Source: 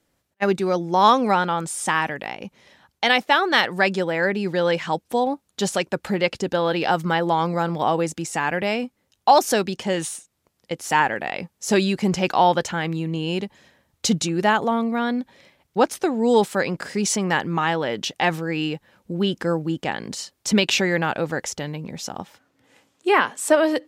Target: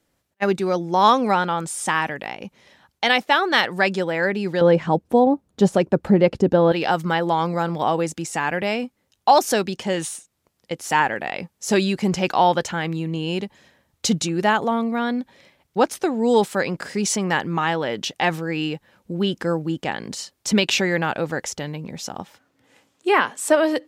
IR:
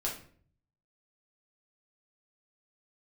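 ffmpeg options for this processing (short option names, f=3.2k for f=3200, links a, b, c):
-filter_complex "[0:a]asettb=1/sr,asplit=3[a][b][c];[a]atrim=end=4.614[d];[b]atrim=start=4.61:end=6.72,asetpts=PTS-STARTPTS,afade=t=in:d=0.004:c=qsin,afade=t=out:st=2.106:d=0.004:c=qsin,tiltshelf=f=1.1k:g=9.5[e];[c]atrim=start=6.716[f];[d][e]acrossfade=d=0.004:c1=hsin:c2=qsin[g];[g][f]acrossfade=d=0.004:c1=qsin:c2=hsin"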